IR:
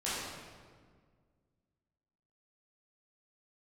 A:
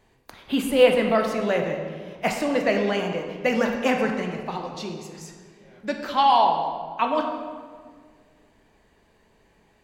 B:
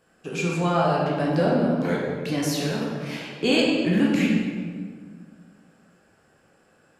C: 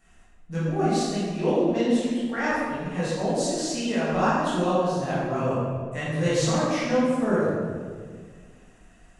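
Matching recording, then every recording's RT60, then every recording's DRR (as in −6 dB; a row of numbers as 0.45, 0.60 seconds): C; 1.8, 1.7, 1.7 seconds; 2.5, −4.0, −11.0 decibels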